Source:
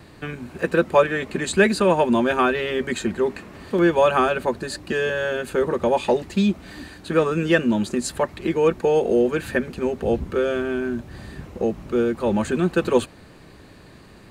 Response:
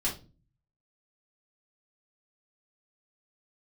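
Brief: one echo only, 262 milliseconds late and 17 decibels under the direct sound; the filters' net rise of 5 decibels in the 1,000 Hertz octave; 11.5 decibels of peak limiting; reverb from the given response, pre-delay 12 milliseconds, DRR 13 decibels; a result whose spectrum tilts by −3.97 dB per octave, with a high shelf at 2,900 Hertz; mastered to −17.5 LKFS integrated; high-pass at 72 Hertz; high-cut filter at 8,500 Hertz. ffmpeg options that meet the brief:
-filter_complex "[0:a]highpass=72,lowpass=8500,equalizer=frequency=1000:width_type=o:gain=5.5,highshelf=frequency=2900:gain=5,alimiter=limit=-13dB:level=0:latency=1,aecho=1:1:262:0.141,asplit=2[link_01][link_02];[1:a]atrim=start_sample=2205,adelay=12[link_03];[link_02][link_03]afir=irnorm=-1:irlink=0,volume=-19dB[link_04];[link_01][link_04]amix=inputs=2:normalize=0,volume=5.5dB"

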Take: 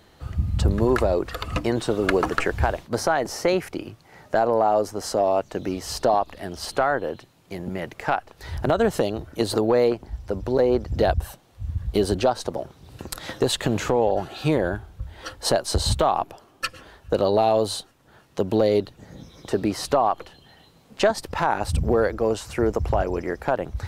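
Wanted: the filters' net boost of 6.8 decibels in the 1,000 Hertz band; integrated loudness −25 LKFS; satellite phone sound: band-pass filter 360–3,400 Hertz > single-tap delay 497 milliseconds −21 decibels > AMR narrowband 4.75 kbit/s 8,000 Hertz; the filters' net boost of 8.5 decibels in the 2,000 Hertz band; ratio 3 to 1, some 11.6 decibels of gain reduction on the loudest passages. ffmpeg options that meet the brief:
ffmpeg -i in.wav -af "equalizer=frequency=1000:width_type=o:gain=8,equalizer=frequency=2000:width_type=o:gain=8.5,acompressor=threshold=-27dB:ratio=3,highpass=360,lowpass=3400,aecho=1:1:497:0.0891,volume=8.5dB" -ar 8000 -c:a libopencore_amrnb -b:a 4750 out.amr

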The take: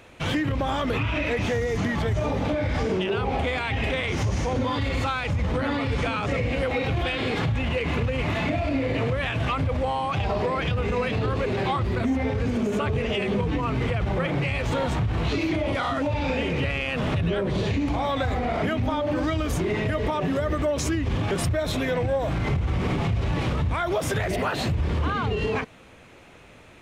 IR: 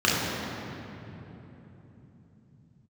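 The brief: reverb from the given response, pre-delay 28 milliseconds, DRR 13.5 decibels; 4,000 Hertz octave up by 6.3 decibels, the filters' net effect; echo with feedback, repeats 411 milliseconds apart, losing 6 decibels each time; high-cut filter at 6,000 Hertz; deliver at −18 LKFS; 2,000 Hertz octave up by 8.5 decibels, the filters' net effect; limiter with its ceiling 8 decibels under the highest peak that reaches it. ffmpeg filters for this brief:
-filter_complex "[0:a]lowpass=6000,equalizer=frequency=2000:width_type=o:gain=9,equalizer=frequency=4000:width_type=o:gain=5,alimiter=limit=-16.5dB:level=0:latency=1,aecho=1:1:411|822|1233|1644|2055|2466:0.501|0.251|0.125|0.0626|0.0313|0.0157,asplit=2[link_01][link_02];[1:a]atrim=start_sample=2205,adelay=28[link_03];[link_02][link_03]afir=irnorm=-1:irlink=0,volume=-32dB[link_04];[link_01][link_04]amix=inputs=2:normalize=0,volume=5dB"

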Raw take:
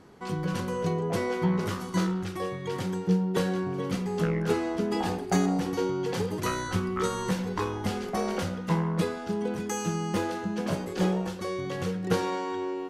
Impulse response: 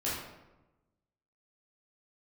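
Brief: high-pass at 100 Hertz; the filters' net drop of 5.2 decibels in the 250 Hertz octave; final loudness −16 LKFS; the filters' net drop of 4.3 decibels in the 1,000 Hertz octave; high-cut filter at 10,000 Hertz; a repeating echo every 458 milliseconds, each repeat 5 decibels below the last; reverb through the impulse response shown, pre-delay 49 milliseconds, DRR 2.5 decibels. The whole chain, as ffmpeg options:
-filter_complex "[0:a]highpass=100,lowpass=10000,equalizer=frequency=250:width_type=o:gain=-8,equalizer=frequency=1000:width_type=o:gain=-5,aecho=1:1:458|916|1374|1832|2290|2748|3206:0.562|0.315|0.176|0.0988|0.0553|0.031|0.0173,asplit=2[link_01][link_02];[1:a]atrim=start_sample=2205,adelay=49[link_03];[link_02][link_03]afir=irnorm=-1:irlink=0,volume=-9dB[link_04];[link_01][link_04]amix=inputs=2:normalize=0,volume=13.5dB"

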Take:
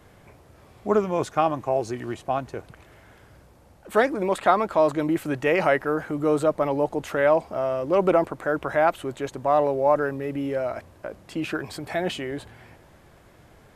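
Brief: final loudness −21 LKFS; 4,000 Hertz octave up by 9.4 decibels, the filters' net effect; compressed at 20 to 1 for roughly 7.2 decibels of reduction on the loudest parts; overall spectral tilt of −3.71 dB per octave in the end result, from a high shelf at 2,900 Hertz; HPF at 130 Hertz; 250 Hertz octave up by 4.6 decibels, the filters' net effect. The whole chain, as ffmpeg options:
ffmpeg -i in.wav -af "highpass=130,equalizer=frequency=250:width_type=o:gain=6.5,highshelf=frequency=2900:gain=4.5,equalizer=frequency=4000:width_type=o:gain=9,acompressor=threshold=-19dB:ratio=20,volume=5dB" out.wav

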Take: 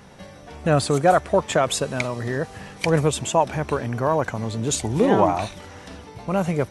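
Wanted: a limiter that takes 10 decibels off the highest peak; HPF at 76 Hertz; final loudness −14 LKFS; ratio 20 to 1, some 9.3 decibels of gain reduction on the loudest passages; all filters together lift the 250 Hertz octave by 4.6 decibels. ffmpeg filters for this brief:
ffmpeg -i in.wav -af "highpass=76,equalizer=frequency=250:width_type=o:gain=6.5,acompressor=threshold=-19dB:ratio=20,volume=15dB,alimiter=limit=-2.5dB:level=0:latency=1" out.wav

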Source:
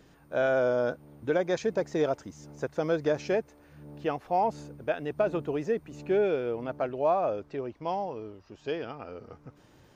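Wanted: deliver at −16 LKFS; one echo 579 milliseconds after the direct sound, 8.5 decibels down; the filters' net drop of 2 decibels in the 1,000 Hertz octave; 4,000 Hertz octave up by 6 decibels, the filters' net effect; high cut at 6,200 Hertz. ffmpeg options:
ffmpeg -i in.wav -af "lowpass=6200,equalizer=frequency=1000:width_type=o:gain=-3.5,equalizer=frequency=4000:width_type=o:gain=8.5,aecho=1:1:579:0.376,volume=14.5dB" out.wav

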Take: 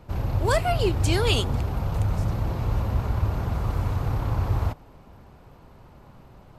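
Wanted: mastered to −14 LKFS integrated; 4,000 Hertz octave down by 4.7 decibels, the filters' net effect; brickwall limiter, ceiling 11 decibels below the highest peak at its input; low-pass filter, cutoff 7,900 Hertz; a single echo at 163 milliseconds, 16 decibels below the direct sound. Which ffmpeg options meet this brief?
ffmpeg -i in.wav -af "lowpass=7900,equalizer=frequency=4000:width_type=o:gain=-6.5,alimiter=limit=-20dB:level=0:latency=1,aecho=1:1:163:0.158,volume=15.5dB" out.wav

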